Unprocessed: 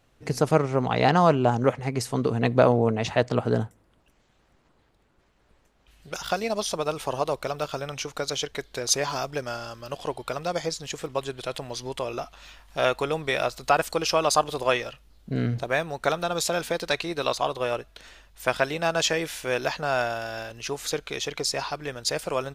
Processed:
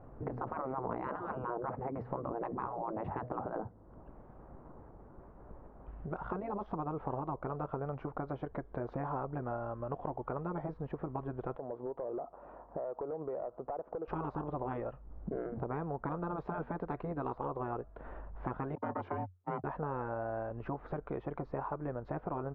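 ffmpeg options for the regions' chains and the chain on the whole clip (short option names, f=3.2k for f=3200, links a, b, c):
-filter_complex "[0:a]asettb=1/sr,asplit=3[a][b][c];[a]atrim=end=11.574[d];[b]atrim=start=11.57:end=14.08,asetpts=PTS-STARTPTS,afade=t=in:d=0.004:c=qsin,afade=t=out:st=2.506:d=0.004:c=qsin,bandpass=f=500:t=q:w=1.2,acompressor=threshold=-34dB:ratio=6:attack=3.2:release=140:knee=1:detection=peak,asoftclip=type=hard:threshold=-34dB[e];[c]atrim=start=14.076[f];[d][e]acrossfade=d=0.004:c1=hsin:c2=qsin[g];[g][f]acrossfade=d=0.004:c1=qsin:c2=hsin,asettb=1/sr,asplit=3[h][i][j];[h]atrim=end=18.754[k];[i]atrim=start=18.75:end=19.64,asetpts=PTS-STARTPTS,afade=t=in:d=0.004:c=qsin,afade=t=out:st=0.886:d=0.004:c=qsin,agate=range=-44dB:threshold=-29dB:ratio=16:release=100:detection=peak,aeval=exprs='val(0)*sin(2*PI*310*n/s)':c=same,afreqshift=90[l];[j]atrim=start=19.636[m];[k][l]acrossfade=d=0.004:c1=hsin:c2=qsin[n];[n][m]acrossfade=d=0.004:c1=qsin:c2=hsin,afftfilt=real='re*lt(hypot(re,im),0.2)':imag='im*lt(hypot(re,im),0.2)':win_size=1024:overlap=0.75,lowpass=f=1.1k:w=0.5412,lowpass=f=1.1k:w=1.3066,acompressor=threshold=-55dB:ratio=2.5,volume=12.5dB"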